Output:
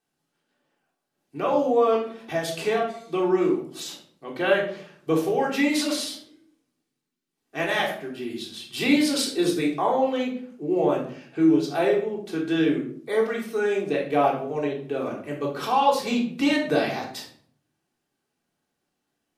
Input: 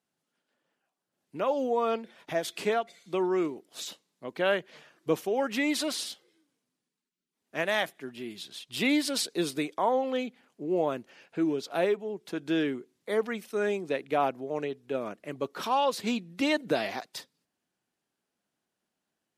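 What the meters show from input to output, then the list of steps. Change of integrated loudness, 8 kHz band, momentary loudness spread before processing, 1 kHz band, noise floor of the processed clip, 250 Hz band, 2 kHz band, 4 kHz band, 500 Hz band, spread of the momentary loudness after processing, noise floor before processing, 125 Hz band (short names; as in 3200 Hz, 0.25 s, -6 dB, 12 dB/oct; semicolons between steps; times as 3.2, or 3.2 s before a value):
+6.0 dB, +3.5 dB, 13 LU, +5.5 dB, -80 dBFS, +7.5 dB, +4.5 dB, +4.0 dB, +5.5 dB, 13 LU, -85 dBFS, +7.5 dB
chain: wow and flutter 22 cents; shoebox room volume 750 m³, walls furnished, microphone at 3.6 m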